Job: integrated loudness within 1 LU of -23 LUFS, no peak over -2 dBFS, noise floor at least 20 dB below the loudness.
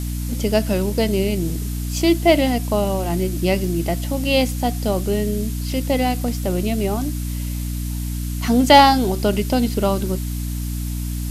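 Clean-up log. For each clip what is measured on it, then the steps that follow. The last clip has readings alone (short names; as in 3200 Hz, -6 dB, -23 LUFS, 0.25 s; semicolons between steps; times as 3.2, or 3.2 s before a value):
hum 60 Hz; harmonics up to 300 Hz; hum level -22 dBFS; noise floor -25 dBFS; noise floor target -40 dBFS; loudness -20.0 LUFS; peak -1.0 dBFS; loudness target -23.0 LUFS
-> notches 60/120/180/240/300 Hz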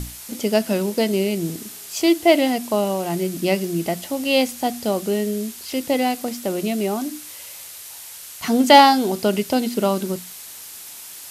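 hum none; noise floor -38 dBFS; noise floor target -40 dBFS
-> noise print and reduce 6 dB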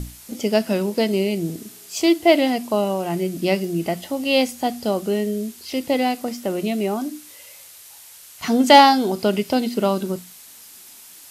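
noise floor -44 dBFS; loudness -20.0 LUFS; peak -1.5 dBFS; loudness target -23.0 LUFS
-> gain -3 dB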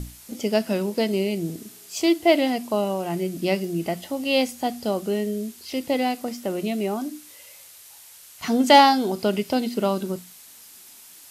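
loudness -23.0 LUFS; peak -4.5 dBFS; noise floor -47 dBFS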